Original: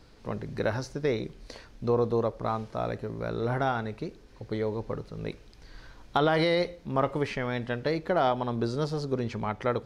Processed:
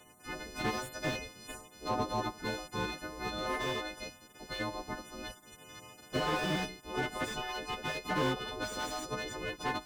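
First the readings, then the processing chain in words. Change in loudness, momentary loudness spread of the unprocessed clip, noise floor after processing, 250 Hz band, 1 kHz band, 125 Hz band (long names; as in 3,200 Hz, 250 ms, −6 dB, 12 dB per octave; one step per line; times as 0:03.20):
−6.5 dB, 13 LU, −58 dBFS, −7.5 dB, −5.0 dB, −10.0 dB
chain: every partial snapped to a pitch grid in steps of 3 semitones
gate on every frequency bin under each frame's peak −10 dB weak
slew-rate limiting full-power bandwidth 31 Hz
level +2.5 dB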